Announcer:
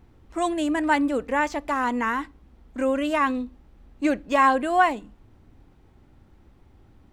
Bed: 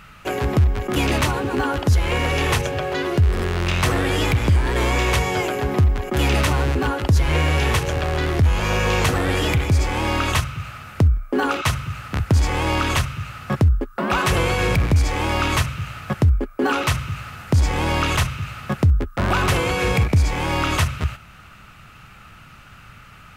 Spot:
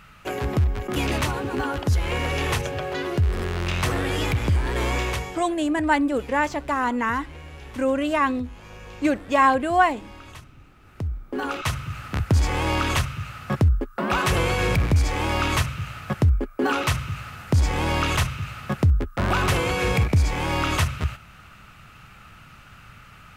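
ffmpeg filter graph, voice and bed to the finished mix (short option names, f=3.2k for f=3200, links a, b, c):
-filter_complex "[0:a]adelay=5000,volume=1dB[a];[1:a]volume=15.5dB,afade=t=out:st=4.95:d=0.51:silence=0.125893,afade=t=in:st=10.75:d=1.3:silence=0.1[b];[a][b]amix=inputs=2:normalize=0"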